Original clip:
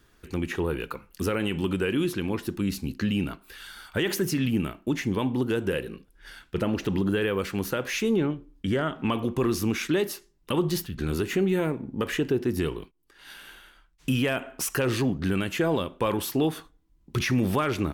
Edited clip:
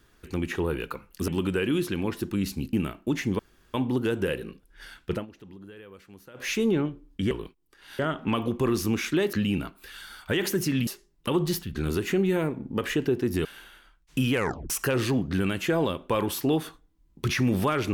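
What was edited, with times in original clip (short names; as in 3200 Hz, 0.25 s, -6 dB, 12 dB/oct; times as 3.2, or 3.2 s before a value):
1.28–1.54 cut
2.99–4.53 move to 10.1
5.19 insert room tone 0.35 s
6.57–7.93 dip -20.5 dB, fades 0.14 s
12.68–13.36 move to 8.76
14.25 tape stop 0.36 s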